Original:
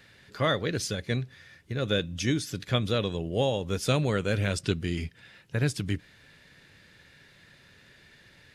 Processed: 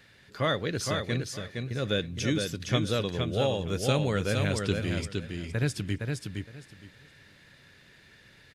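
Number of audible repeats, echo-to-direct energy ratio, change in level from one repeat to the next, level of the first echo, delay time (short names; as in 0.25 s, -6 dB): 3, -4.5 dB, -14.5 dB, -4.5 dB, 0.464 s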